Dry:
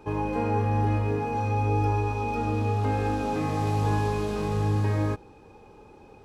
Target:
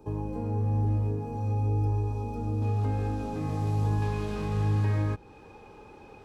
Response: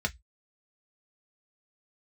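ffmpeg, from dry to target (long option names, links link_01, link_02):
-filter_complex "[0:a]asetnsamples=nb_out_samples=441:pad=0,asendcmd='2.62 equalizer g -4;4.02 equalizer g 4.5',equalizer=frequency=2100:width=0.57:gain=-14.5,acrossover=split=210[link_01][link_02];[link_02]acompressor=threshold=-40dB:ratio=2[link_03];[link_01][link_03]amix=inputs=2:normalize=0"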